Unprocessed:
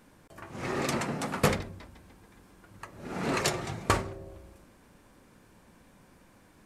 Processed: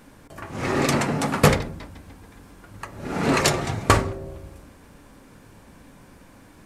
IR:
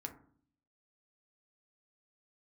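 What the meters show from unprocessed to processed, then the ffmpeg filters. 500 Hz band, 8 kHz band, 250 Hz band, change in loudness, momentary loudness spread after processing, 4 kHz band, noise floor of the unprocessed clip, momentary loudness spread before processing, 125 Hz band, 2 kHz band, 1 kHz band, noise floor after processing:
+8.5 dB, +8.0 dB, +9.5 dB, +9.0 dB, 21 LU, +8.0 dB, -59 dBFS, 20 LU, +10.5 dB, +8.0 dB, +8.5 dB, -50 dBFS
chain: -filter_complex "[0:a]asplit=2[a][b];[1:a]atrim=start_sample=2205,lowshelf=f=170:g=6[c];[b][c]afir=irnorm=-1:irlink=0,volume=-3dB[d];[a][d]amix=inputs=2:normalize=0,volume=5dB"

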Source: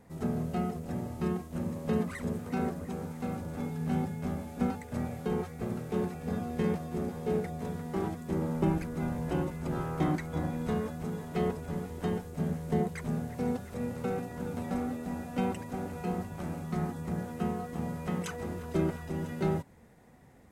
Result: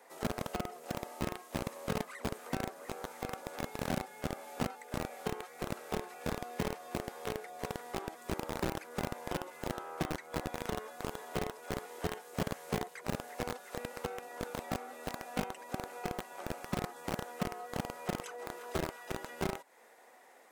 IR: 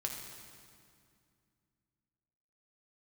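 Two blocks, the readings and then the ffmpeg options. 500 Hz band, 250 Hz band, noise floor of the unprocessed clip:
-4.5 dB, -9.0 dB, -46 dBFS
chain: -filter_complex "[0:a]acrossover=split=160|840[a][b][c];[a]acompressor=threshold=-47dB:ratio=4[d];[b]acompressor=threshold=-44dB:ratio=4[e];[c]acompressor=threshold=-54dB:ratio=4[f];[d][e][f]amix=inputs=3:normalize=0,acrossover=split=440|4000[g][h][i];[g]acrusher=bits=5:mix=0:aa=0.000001[j];[j][h][i]amix=inputs=3:normalize=0,volume=5.5dB"

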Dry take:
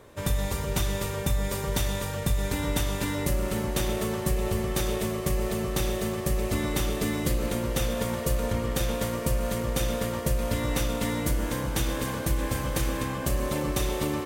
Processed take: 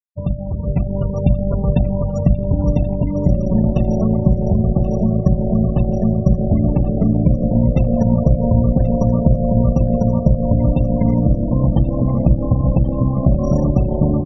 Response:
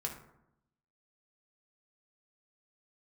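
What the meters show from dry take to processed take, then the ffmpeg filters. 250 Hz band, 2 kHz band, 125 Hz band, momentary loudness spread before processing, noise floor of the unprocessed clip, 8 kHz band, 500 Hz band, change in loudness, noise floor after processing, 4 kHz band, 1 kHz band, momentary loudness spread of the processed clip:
+14.5 dB, under -10 dB, +15.0 dB, 1 LU, -33 dBFS, under -15 dB, +8.5 dB, +11.5 dB, -22 dBFS, under -15 dB, +3.5 dB, 3 LU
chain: -af "acompressor=threshold=-26dB:ratio=3,equalizer=f=630:t=o:w=0.67:g=11,equalizer=f=1.6k:t=o:w=0.67:g=-5,equalizer=f=10k:t=o:w=0.67:g=-9,acrusher=samples=7:mix=1:aa=0.000001,aeval=exprs='0.188*(cos(1*acos(clip(val(0)/0.188,-1,1)))-cos(1*PI/2))+0.00422*(cos(6*acos(clip(val(0)/0.188,-1,1)))-cos(6*PI/2))+0.0119*(cos(7*acos(clip(val(0)/0.188,-1,1)))-cos(7*PI/2))':c=same,lowshelf=f=290:t=q:w=1.5:g=11.5,afftfilt=real='re*gte(hypot(re,im),0.0501)':imag='im*gte(hypot(re,im),0.0501)':win_size=1024:overlap=0.75,bandreject=f=50:t=h:w=6,bandreject=f=100:t=h:w=6,bandreject=f=150:t=h:w=6,bandreject=f=200:t=h:w=6,bandreject=f=250:t=h:w=6,bandreject=f=300:t=h:w=6,bandreject=f=350:t=h:w=6,aecho=1:1:1080|2160|3240:0.178|0.064|0.023,dynaudnorm=f=560:g=3:m=11.5dB,bandreject=f=870:w=21"

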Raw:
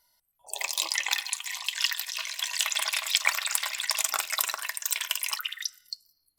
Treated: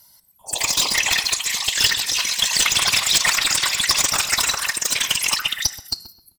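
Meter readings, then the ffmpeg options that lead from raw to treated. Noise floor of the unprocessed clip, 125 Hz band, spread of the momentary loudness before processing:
-74 dBFS, n/a, 9 LU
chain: -filter_complex "[0:a]acrossover=split=7600[a][b];[b]acompressor=threshold=-47dB:ratio=4:attack=1:release=60[c];[a][c]amix=inputs=2:normalize=0,highpass=87,bass=f=250:g=14,treble=f=4k:g=9,aeval=exprs='clip(val(0),-1,0.0794)':c=same,apsyclip=15.5dB,bandreject=f=158.2:t=h:w=4,bandreject=f=316.4:t=h:w=4,bandreject=f=474.6:t=h:w=4,bandreject=f=632.8:t=h:w=4,bandreject=f=791:t=h:w=4,bandreject=f=949.2:t=h:w=4,bandreject=f=1.1074k:t=h:w=4,bandreject=f=1.2656k:t=h:w=4,bandreject=f=1.4238k:t=h:w=4,bandreject=f=1.582k:t=h:w=4,bandreject=f=1.7402k:t=h:w=4,bandreject=f=1.8984k:t=h:w=4,bandreject=f=2.0566k:t=h:w=4,bandreject=f=2.2148k:t=h:w=4,bandreject=f=2.373k:t=h:w=4,bandreject=f=2.5312k:t=h:w=4,bandreject=f=2.6894k:t=h:w=4,bandreject=f=2.8476k:t=h:w=4,bandreject=f=3.0058k:t=h:w=4,bandreject=f=3.164k:t=h:w=4,bandreject=f=3.3222k:t=h:w=4,bandreject=f=3.4804k:t=h:w=4,bandreject=f=3.6386k:t=h:w=4,bandreject=f=3.7968k:t=h:w=4,bandreject=f=3.955k:t=h:w=4,bandreject=f=4.1132k:t=h:w=4,bandreject=f=4.2714k:t=h:w=4,bandreject=f=4.4296k:t=h:w=4,bandreject=f=4.5878k:t=h:w=4,bandreject=f=4.746k:t=h:w=4,bandreject=f=4.9042k:t=h:w=4,bandreject=f=5.0624k:t=h:w=4,bandreject=f=5.2206k:t=h:w=4,bandreject=f=5.3788k:t=h:w=4,bandreject=f=5.537k:t=h:w=4,bandreject=f=5.6952k:t=h:w=4,bandreject=f=5.8534k:t=h:w=4,afftfilt=real='hypot(re,im)*cos(2*PI*random(0))':imag='hypot(re,im)*sin(2*PI*random(1))':win_size=512:overlap=0.75,asplit=2[d][e];[e]adelay=130,lowpass=f=1.5k:p=1,volume=-10.5dB,asplit=2[f][g];[g]adelay=130,lowpass=f=1.5k:p=1,volume=0.3,asplit=2[h][i];[i]adelay=130,lowpass=f=1.5k:p=1,volume=0.3[j];[f][h][j]amix=inputs=3:normalize=0[k];[d][k]amix=inputs=2:normalize=0"

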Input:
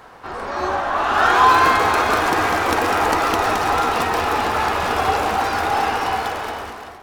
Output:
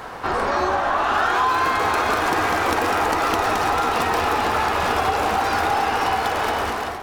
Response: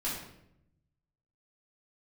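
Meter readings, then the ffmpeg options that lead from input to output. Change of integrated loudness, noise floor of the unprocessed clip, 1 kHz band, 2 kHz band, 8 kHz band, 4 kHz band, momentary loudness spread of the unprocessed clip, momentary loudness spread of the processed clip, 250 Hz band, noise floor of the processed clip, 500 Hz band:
-2.5 dB, -38 dBFS, -2.0 dB, -2.0 dB, -1.5 dB, -1.5 dB, 12 LU, 3 LU, -1.5 dB, -29 dBFS, -1.0 dB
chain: -af "acompressor=threshold=-27dB:ratio=6,volume=9dB"

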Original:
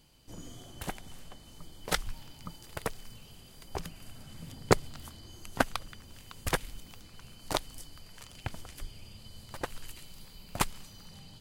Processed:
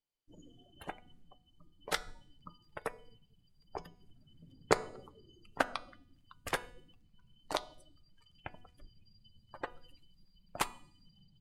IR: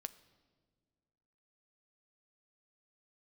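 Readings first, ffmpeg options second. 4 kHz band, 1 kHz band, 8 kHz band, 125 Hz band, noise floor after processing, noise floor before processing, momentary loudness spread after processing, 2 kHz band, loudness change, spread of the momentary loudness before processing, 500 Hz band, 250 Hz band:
-5.5 dB, -3.0 dB, -7.5 dB, -13.0 dB, -69 dBFS, -54 dBFS, 24 LU, -3.0 dB, -3.0 dB, 19 LU, -3.5 dB, -8.0 dB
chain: -filter_complex "[1:a]atrim=start_sample=2205[a];[0:a][a]afir=irnorm=-1:irlink=0,afftdn=nr=27:nf=-47,bass=f=250:g=-12,treble=f=4k:g=-3,bandreject=f=245.3:t=h:w=4,bandreject=f=490.6:t=h:w=4,bandreject=f=735.9:t=h:w=4,bandreject=f=981.2:t=h:w=4,bandreject=f=1.2265k:t=h:w=4,bandreject=f=1.4718k:t=h:w=4,bandreject=f=1.7171k:t=h:w=4,bandreject=f=1.9624k:t=h:w=4,bandreject=f=2.2077k:t=h:w=4,bandreject=f=2.453k:t=h:w=4,bandreject=f=2.6983k:t=h:w=4,bandreject=f=2.9436k:t=h:w=4,bandreject=f=3.1889k:t=h:w=4,bandreject=f=3.4342k:t=h:w=4,bandreject=f=3.6795k:t=h:w=4,bandreject=f=3.9248k:t=h:w=4,bandreject=f=4.1701k:t=h:w=4,bandreject=f=4.4154k:t=h:w=4,bandreject=f=4.6607k:t=h:w=4,bandreject=f=4.906k:t=h:w=4,bandreject=f=5.1513k:t=h:w=4,bandreject=f=5.3966k:t=h:w=4,bandreject=f=5.6419k:t=h:w=4,bandreject=f=5.8872k:t=h:w=4,bandreject=f=6.1325k:t=h:w=4,bandreject=f=6.3778k:t=h:w=4,bandreject=f=6.6231k:t=h:w=4,bandreject=f=6.8684k:t=h:w=4,bandreject=f=7.1137k:t=h:w=4,bandreject=f=7.359k:t=h:w=4,bandreject=f=7.6043k:t=h:w=4,bandreject=f=7.8496k:t=h:w=4,bandreject=f=8.0949k:t=h:w=4,bandreject=f=8.3402k:t=h:w=4,bandreject=f=8.5855k:t=h:w=4,bandreject=f=8.8308k:t=h:w=4,bandreject=f=9.0761k:t=h:w=4,bandreject=f=9.3214k:t=h:w=4,volume=1.5dB"

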